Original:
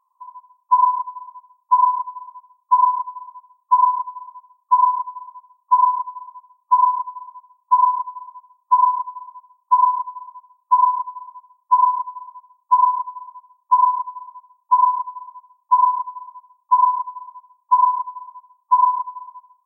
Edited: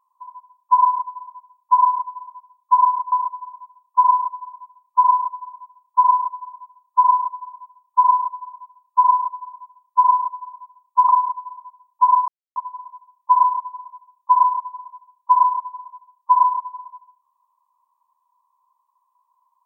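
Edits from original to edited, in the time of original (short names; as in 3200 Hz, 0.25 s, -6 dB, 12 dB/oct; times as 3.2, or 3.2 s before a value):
3.12–4.86 cut
12.83–13.79 cut
14.98 insert silence 0.28 s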